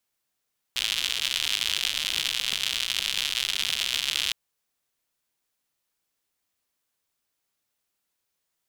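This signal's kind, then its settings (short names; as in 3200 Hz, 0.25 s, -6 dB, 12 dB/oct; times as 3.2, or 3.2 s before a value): rain from filtered ticks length 3.56 s, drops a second 130, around 3200 Hz, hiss -22 dB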